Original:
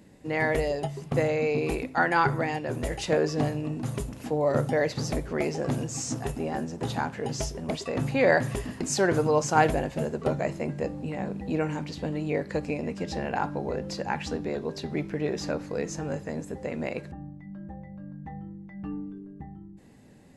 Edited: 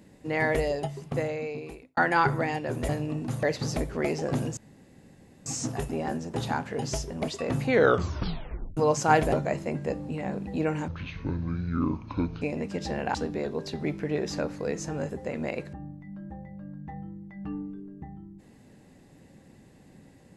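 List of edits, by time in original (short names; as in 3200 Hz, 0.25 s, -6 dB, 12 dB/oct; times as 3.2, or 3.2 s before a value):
0.73–1.97 fade out
2.89–3.44 cut
3.98–4.79 cut
5.93 insert room tone 0.89 s
8.13 tape stop 1.11 s
9.79–10.26 cut
11.82–12.68 speed 56%
13.41–14.25 cut
16.21–16.49 cut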